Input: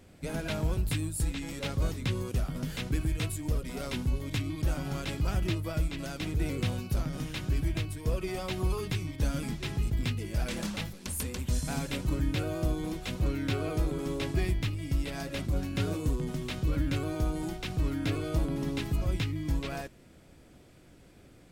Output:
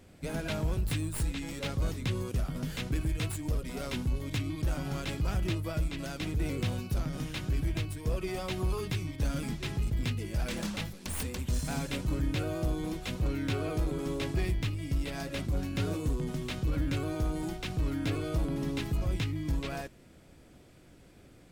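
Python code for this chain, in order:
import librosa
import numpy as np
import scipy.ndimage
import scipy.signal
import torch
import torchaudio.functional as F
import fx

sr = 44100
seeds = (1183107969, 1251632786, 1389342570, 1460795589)

p1 = fx.tracing_dist(x, sr, depth_ms=0.07)
p2 = 10.0 ** (-26.5 / 20.0) * (np.abs((p1 / 10.0 ** (-26.5 / 20.0) + 3.0) % 4.0 - 2.0) - 1.0)
p3 = p1 + F.gain(torch.from_numpy(p2), -11.0).numpy()
y = F.gain(torch.from_numpy(p3), -2.5).numpy()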